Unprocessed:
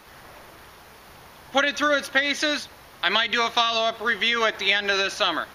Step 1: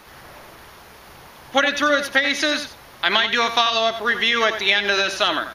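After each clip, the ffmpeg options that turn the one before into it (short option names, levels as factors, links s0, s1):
-af "aecho=1:1:89:0.299,volume=1.41"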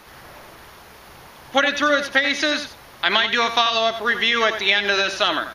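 -filter_complex "[0:a]acrossover=split=7300[s0][s1];[s1]acompressor=threshold=0.00398:ratio=4:attack=1:release=60[s2];[s0][s2]amix=inputs=2:normalize=0"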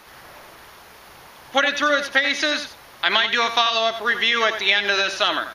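-af "lowshelf=f=340:g=-6"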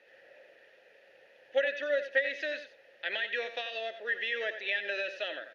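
-filter_complex "[0:a]asplit=3[s0][s1][s2];[s0]bandpass=f=530:t=q:w=8,volume=1[s3];[s1]bandpass=f=1840:t=q:w=8,volume=0.501[s4];[s2]bandpass=f=2480:t=q:w=8,volume=0.355[s5];[s3][s4][s5]amix=inputs=3:normalize=0,volume=0.794"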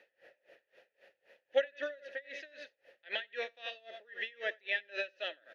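-af "aeval=exprs='val(0)*pow(10,-27*(0.5-0.5*cos(2*PI*3.8*n/s))/20)':c=same"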